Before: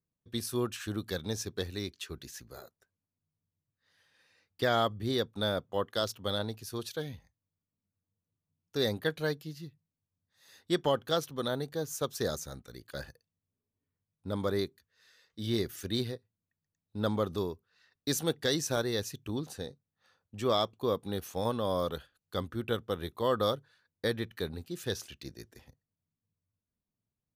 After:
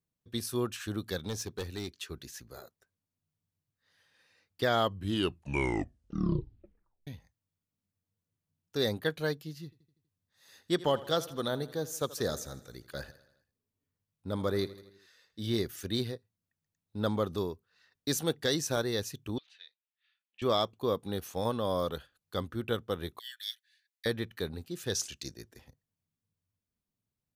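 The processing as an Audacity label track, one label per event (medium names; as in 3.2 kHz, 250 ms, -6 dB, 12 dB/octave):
1.280000	1.910000	hard clipper -31 dBFS
4.780000	4.780000	tape stop 2.29 s
9.640000	15.520000	feedback delay 81 ms, feedback 59%, level -18 dB
19.380000	20.420000	Butterworth band-pass 2.7 kHz, Q 1.7
23.190000	24.060000	steep high-pass 1.7 kHz 96 dB/octave
24.940000	25.340000	peaking EQ 6.7 kHz +13 dB 1.3 oct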